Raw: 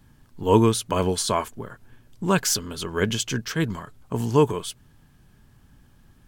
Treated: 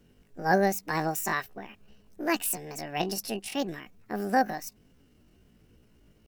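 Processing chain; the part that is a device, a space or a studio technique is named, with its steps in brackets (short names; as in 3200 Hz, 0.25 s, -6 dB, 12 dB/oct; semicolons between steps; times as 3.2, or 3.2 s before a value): chipmunk voice (pitch shift +9.5 st); gain -6 dB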